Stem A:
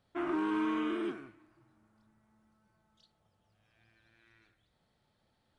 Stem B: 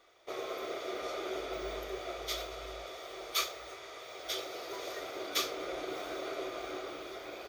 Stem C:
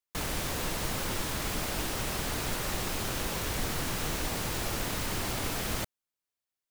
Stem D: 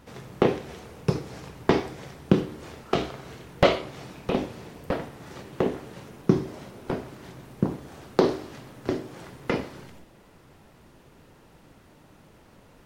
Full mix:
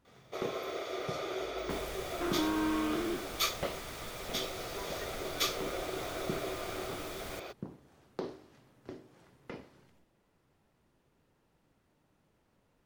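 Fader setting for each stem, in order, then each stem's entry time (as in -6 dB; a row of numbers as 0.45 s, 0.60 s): 0.0 dB, +0.5 dB, -13.0 dB, -18.5 dB; 2.05 s, 0.05 s, 1.55 s, 0.00 s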